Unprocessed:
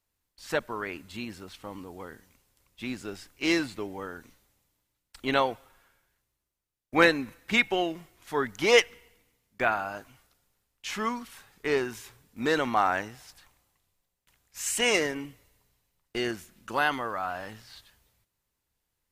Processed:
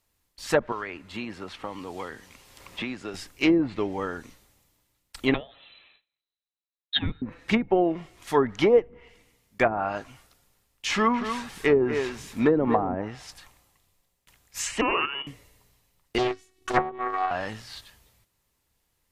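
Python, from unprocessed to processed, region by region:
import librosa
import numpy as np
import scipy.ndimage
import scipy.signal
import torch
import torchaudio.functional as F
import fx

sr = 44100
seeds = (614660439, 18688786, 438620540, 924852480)

y = fx.chain(x, sr, fx.lowpass(hz=1800.0, slope=6),
    fx.low_shelf(hz=450.0, db=-9.0),
    fx.band_squash(depth_pct=100), at=(0.72, 3.14))
y = fx.chain(y, sr, fx.gate_hold(open_db=-55.0, close_db=-59.0, hold_ms=71.0, range_db=-21, attack_ms=1.4, release_ms=100.0),
    fx.freq_invert(carrier_hz=4000), at=(5.34, 7.22))
y = fx.chain(y, sr, fx.law_mismatch(coded='mu'),
    fx.echo_single(ms=238, db=-9.5), at=(10.9, 12.95))
y = fx.chain(y, sr, fx.highpass(hz=350.0, slope=6),
    fx.level_steps(step_db=10),
    fx.freq_invert(carrier_hz=3200), at=(14.81, 15.27))
y = fx.chain(y, sr, fx.transient(attack_db=7, sustain_db=-10),
    fx.robotise(hz=375.0),
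    fx.doppler_dist(depth_ms=0.88), at=(16.18, 17.31))
y = fx.env_lowpass_down(y, sr, base_hz=400.0, full_db=-20.5)
y = fx.notch(y, sr, hz=1500.0, q=17.0)
y = y * 10.0 ** (7.5 / 20.0)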